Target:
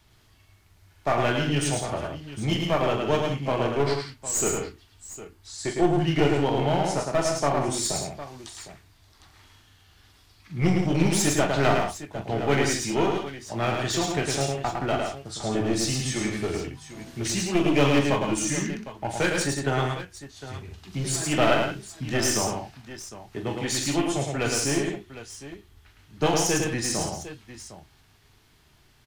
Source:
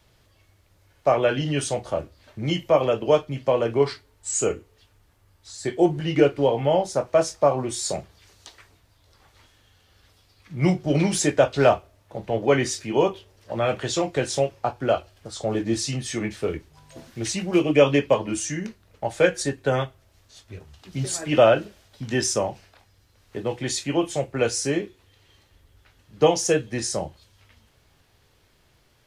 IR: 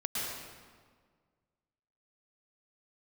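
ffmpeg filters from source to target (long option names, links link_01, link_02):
-filter_complex "[0:a]equalizer=frequency=530:width_type=o:width=0.37:gain=-12,aeval=exprs='clip(val(0),-1,0.0596)':channel_layout=same,asplit=2[link_01][link_02];[link_02]aecho=0:1:42|107|170|757:0.355|0.668|0.355|0.2[link_03];[link_01][link_03]amix=inputs=2:normalize=0"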